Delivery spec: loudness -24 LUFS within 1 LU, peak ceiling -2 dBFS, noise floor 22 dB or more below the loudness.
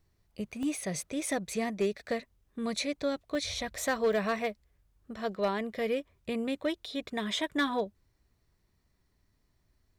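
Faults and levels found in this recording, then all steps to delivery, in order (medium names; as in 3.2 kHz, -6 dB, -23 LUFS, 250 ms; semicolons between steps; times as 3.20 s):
clipped samples 0.3%; clipping level -21.5 dBFS; dropouts 3; longest dropout 1.1 ms; loudness -33.0 LUFS; peak level -21.5 dBFS; loudness target -24.0 LUFS
-> clip repair -21.5 dBFS; interpolate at 0.63/3.35/4.13 s, 1.1 ms; trim +9 dB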